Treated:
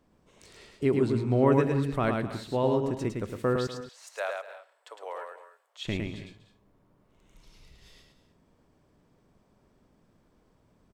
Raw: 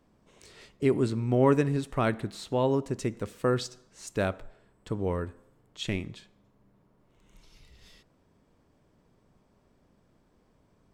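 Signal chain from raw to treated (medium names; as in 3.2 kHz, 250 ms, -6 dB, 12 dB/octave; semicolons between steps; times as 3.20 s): 3.56–5.85 s: steep high-pass 560 Hz 36 dB/octave; dynamic bell 7.5 kHz, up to -7 dB, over -56 dBFS, Q 0.82; multi-tap echo 108/244/299/327 ms -4/-16/-17/-20 dB; trim -1 dB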